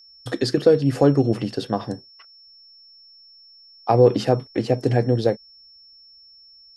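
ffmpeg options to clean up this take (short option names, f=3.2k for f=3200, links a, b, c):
-af "bandreject=f=5.4k:w=30"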